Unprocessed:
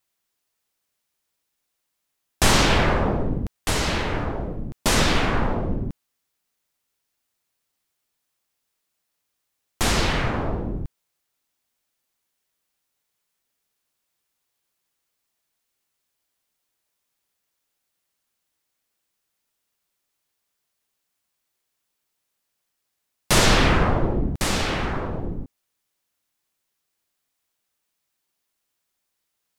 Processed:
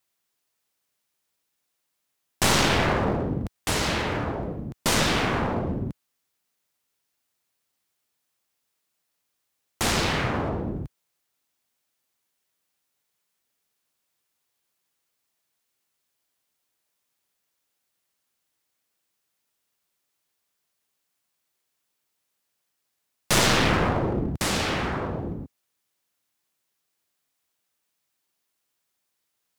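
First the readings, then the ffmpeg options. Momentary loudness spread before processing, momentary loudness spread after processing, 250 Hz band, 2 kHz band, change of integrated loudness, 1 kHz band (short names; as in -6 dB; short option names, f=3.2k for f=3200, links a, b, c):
14 LU, 13 LU, -1.5 dB, -2.0 dB, -2.0 dB, -2.0 dB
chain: -af "highpass=72,aeval=exprs='clip(val(0),-1,0.0668)':c=same"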